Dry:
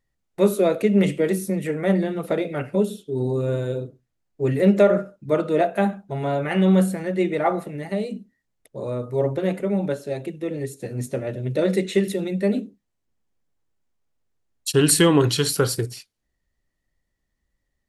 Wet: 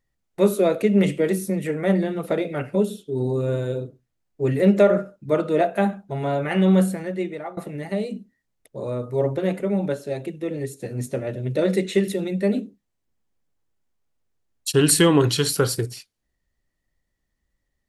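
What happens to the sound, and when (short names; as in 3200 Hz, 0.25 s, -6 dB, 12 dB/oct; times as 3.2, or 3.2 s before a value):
6.88–7.57 fade out, to -20.5 dB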